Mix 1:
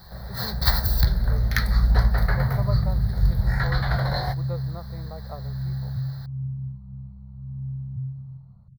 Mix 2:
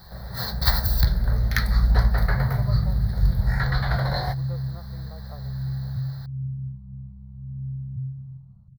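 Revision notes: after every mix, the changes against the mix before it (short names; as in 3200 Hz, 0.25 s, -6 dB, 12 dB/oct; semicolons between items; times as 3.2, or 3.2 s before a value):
speech -7.0 dB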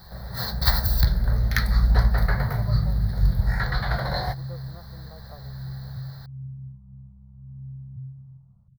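speech: add air absorption 410 m; second sound -6.5 dB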